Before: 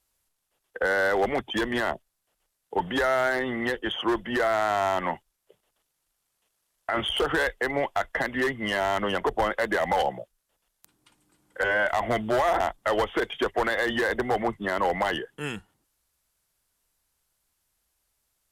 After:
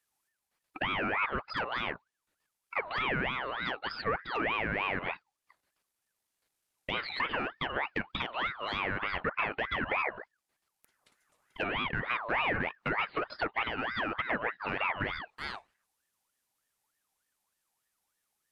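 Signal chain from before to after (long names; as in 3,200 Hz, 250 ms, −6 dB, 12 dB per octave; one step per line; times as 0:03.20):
treble cut that deepens with the level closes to 1,200 Hz, closed at −21.5 dBFS
ring modulator whose carrier an LFO sweeps 1,300 Hz, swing 40%, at 3.3 Hz
level −3.5 dB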